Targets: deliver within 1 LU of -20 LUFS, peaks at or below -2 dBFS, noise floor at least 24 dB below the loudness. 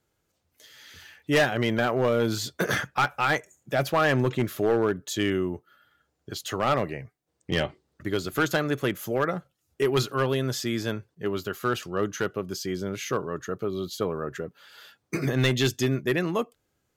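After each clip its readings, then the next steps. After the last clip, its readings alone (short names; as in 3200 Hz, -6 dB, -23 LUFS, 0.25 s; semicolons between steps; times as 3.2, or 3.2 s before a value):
clipped 0.7%; flat tops at -16.0 dBFS; loudness -27.0 LUFS; peak -16.0 dBFS; loudness target -20.0 LUFS
-> clip repair -16 dBFS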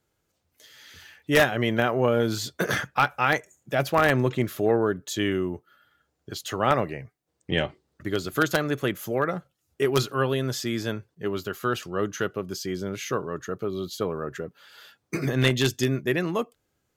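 clipped 0.0%; loudness -26.0 LUFS; peak -7.0 dBFS; loudness target -20.0 LUFS
-> gain +6 dB; limiter -2 dBFS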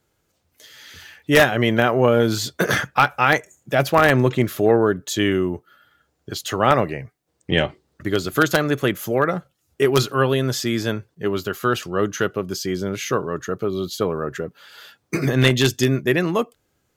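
loudness -20.5 LUFS; peak -2.0 dBFS; noise floor -70 dBFS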